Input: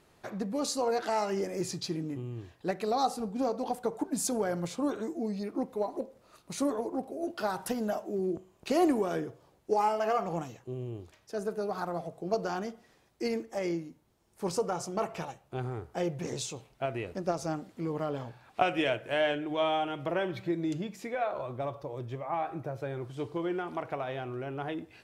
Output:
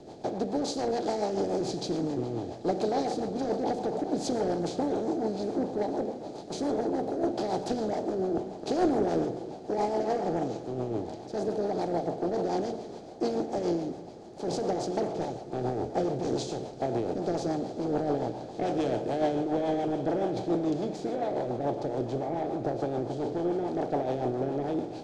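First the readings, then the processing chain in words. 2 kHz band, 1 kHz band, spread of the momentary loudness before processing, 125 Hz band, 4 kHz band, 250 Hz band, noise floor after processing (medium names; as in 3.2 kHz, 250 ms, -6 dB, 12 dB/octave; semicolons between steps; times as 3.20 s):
-6.5 dB, +0.5 dB, 10 LU, +2.0 dB, -1.5 dB, +4.0 dB, -43 dBFS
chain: spectral levelling over time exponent 0.4; high-order bell 1.8 kHz -14 dB; two-band feedback delay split 580 Hz, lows 275 ms, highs 416 ms, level -14.5 dB; waveshaping leveller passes 2; rotary cabinet horn 7 Hz; distance through air 140 m; echo that smears into a reverb 1213 ms, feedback 70%, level -15 dB; three bands expanded up and down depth 70%; trim -8.5 dB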